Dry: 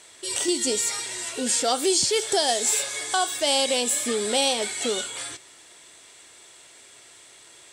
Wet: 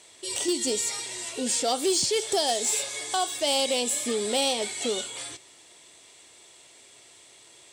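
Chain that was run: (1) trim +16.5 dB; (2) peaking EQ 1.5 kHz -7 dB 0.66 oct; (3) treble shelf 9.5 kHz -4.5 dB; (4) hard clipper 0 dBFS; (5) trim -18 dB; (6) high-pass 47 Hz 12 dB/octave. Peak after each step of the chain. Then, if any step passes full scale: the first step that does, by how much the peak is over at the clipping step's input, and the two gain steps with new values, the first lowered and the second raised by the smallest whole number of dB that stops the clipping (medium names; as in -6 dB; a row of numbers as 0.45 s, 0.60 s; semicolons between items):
+6.0 dBFS, +5.5 dBFS, +5.0 dBFS, 0.0 dBFS, -18.0 dBFS, -17.0 dBFS; step 1, 5.0 dB; step 1 +11.5 dB, step 5 -13 dB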